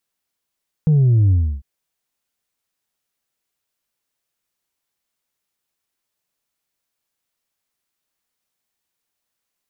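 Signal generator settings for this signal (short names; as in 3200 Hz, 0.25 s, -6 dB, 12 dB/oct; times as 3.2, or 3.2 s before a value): sub drop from 160 Hz, over 0.75 s, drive 2 dB, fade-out 0.31 s, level -11 dB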